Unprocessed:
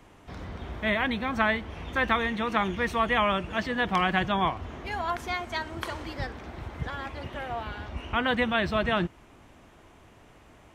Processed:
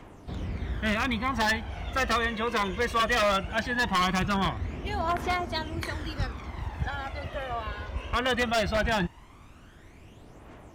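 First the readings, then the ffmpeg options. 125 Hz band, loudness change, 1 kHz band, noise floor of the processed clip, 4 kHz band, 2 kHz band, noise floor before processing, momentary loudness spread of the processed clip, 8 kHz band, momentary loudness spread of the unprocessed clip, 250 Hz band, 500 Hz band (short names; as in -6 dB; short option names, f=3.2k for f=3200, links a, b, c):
+2.5 dB, 0.0 dB, -0.5 dB, -51 dBFS, +2.0 dB, -0.5 dB, -55 dBFS, 10 LU, +10.0 dB, 12 LU, -1.0 dB, +0.5 dB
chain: -af "aphaser=in_gain=1:out_gain=1:delay=2:decay=0.55:speed=0.19:type=triangular,aeval=exprs='0.119*(abs(mod(val(0)/0.119+3,4)-2)-1)':c=same"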